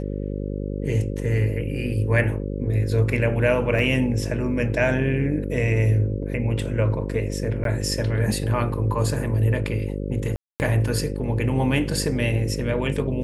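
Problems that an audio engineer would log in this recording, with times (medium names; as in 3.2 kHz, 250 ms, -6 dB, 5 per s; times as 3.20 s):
buzz 50 Hz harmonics 11 -28 dBFS
3.79 s: dropout 2.5 ms
7.64–7.65 s: dropout 12 ms
10.36–10.60 s: dropout 239 ms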